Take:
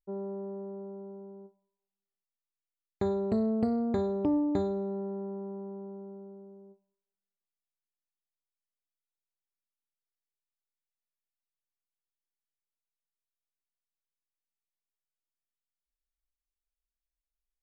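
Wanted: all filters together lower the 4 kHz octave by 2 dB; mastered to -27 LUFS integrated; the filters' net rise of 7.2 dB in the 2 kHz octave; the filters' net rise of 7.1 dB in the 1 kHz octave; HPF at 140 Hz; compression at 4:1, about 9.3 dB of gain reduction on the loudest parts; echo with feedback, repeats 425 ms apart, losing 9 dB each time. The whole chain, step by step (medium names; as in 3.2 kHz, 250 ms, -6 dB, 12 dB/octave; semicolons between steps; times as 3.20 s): high-pass 140 Hz; peaking EQ 1 kHz +8.5 dB; peaking EQ 2 kHz +6.5 dB; peaking EQ 4 kHz -4 dB; compression 4:1, threshold -34 dBFS; feedback delay 425 ms, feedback 35%, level -9 dB; trim +11 dB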